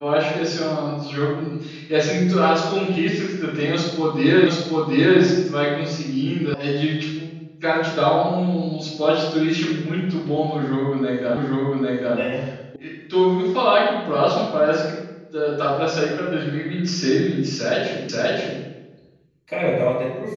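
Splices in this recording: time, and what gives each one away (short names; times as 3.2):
4.47 repeat of the last 0.73 s
6.54 sound cut off
11.37 repeat of the last 0.8 s
12.76 sound cut off
18.09 repeat of the last 0.53 s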